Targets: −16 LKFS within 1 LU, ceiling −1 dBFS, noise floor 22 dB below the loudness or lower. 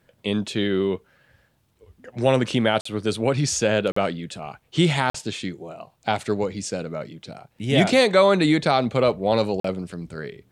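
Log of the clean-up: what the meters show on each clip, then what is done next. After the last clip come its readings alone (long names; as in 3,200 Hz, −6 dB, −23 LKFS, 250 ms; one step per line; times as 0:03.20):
number of dropouts 4; longest dropout 44 ms; integrated loudness −22.0 LKFS; sample peak −5.0 dBFS; target loudness −16.0 LKFS
→ repair the gap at 0:02.81/0:03.92/0:05.10/0:09.60, 44 ms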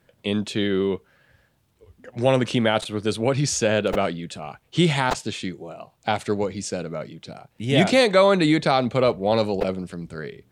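number of dropouts 0; integrated loudness −22.0 LKFS; sample peak −5.0 dBFS; target loudness −16.0 LKFS
→ level +6 dB
brickwall limiter −1 dBFS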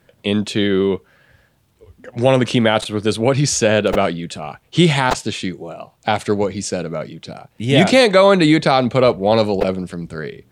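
integrated loudness −16.5 LKFS; sample peak −1.0 dBFS; background noise floor −59 dBFS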